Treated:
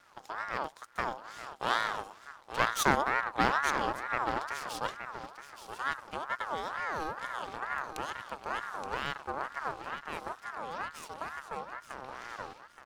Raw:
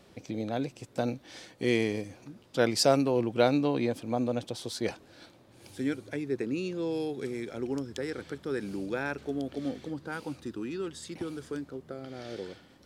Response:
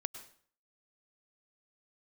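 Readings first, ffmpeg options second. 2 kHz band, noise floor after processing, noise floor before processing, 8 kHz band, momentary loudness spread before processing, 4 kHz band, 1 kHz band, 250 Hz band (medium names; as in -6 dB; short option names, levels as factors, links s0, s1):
+5.5 dB, -56 dBFS, -58 dBFS, -2.5 dB, 15 LU, -3.0 dB, +7.0 dB, -12.5 dB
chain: -af "aecho=1:1:873|1746|2619:0.316|0.0759|0.0182,aeval=exprs='max(val(0),0)':c=same,aeval=exprs='val(0)*sin(2*PI*1100*n/s+1100*0.3/2.2*sin(2*PI*2.2*n/s))':c=same,volume=1.26"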